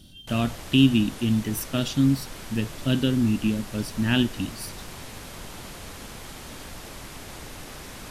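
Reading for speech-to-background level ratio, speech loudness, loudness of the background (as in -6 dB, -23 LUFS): 15.5 dB, -24.5 LUFS, -40.0 LUFS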